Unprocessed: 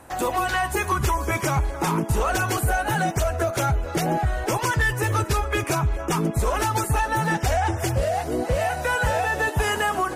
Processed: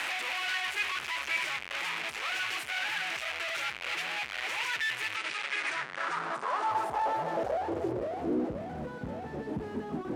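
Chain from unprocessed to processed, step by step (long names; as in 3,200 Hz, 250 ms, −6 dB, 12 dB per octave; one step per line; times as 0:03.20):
sign of each sample alone
0:05.16–0:06.71: Chebyshev band-pass filter 140–9,500 Hz, order 4
band-pass filter sweep 2,400 Hz → 230 Hz, 0:05.42–0:08.66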